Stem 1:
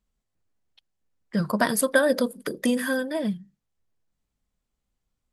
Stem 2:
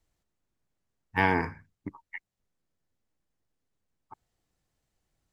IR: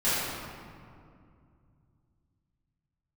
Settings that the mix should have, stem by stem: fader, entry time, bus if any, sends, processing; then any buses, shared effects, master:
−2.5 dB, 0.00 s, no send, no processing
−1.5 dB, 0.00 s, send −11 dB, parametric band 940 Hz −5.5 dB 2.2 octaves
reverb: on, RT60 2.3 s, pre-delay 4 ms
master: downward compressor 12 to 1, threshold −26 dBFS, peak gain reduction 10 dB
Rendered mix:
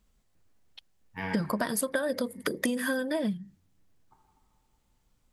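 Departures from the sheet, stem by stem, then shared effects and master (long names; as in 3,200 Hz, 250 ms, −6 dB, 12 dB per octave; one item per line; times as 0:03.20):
stem 1 −2.5 dB → +9.0 dB
stem 2 −1.5 dB → −11.5 dB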